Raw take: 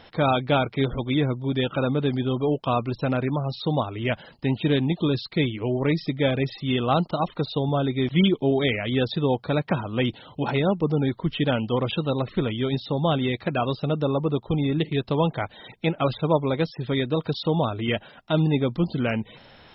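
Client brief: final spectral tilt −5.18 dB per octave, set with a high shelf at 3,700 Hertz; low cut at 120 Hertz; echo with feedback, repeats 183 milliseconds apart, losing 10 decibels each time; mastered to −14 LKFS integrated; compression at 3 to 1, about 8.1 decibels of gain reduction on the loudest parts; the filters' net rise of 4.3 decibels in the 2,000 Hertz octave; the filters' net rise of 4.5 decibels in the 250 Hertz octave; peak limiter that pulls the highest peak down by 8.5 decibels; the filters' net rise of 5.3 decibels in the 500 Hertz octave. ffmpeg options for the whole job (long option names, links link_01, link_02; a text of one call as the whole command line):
ffmpeg -i in.wav -af "highpass=120,equalizer=frequency=250:width_type=o:gain=4.5,equalizer=frequency=500:width_type=o:gain=5,equalizer=frequency=2000:width_type=o:gain=3.5,highshelf=frequency=3700:gain=5.5,acompressor=threshold=-23dB:ratio=3,alimiter=limit=-18dB:level=0:latency=1,aecho=1:1:183|366|549|732:0.316|0.101|0.0324|0.0104,volume=15dB" out.wav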